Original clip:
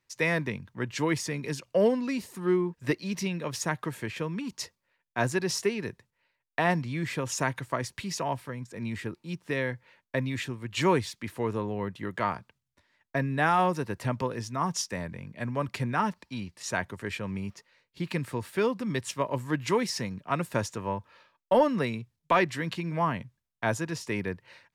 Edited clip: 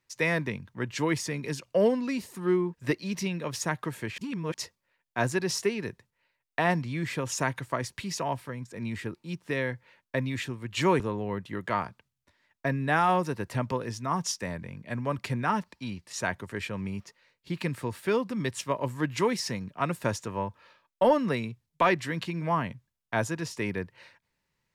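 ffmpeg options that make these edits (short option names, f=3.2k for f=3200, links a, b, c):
-filter_complex "[0:a]asplit=4[a][b][c][d];[a]atrim=end=4.182[e];[b]atrim=start=4.178:end=4.542,asetpts=PTS-STARTPTS,areverse[f];[c]atrim=start=4.538:end=11.002[g];[d]atrim=start=11.498[h];[e][f]acrossfade=d=0.004:c1=hsin:c2=hsin[i];[i][g]acrossfade=d=0.004:c1=hsin:c2=hsin[j];[j][h]acrossfade=d=0.004:c1=hsin:c2=hsin"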